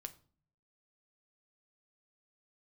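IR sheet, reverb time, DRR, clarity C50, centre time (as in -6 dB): 0.45 s, 8.0 dB, 17.5 dB, 4 ms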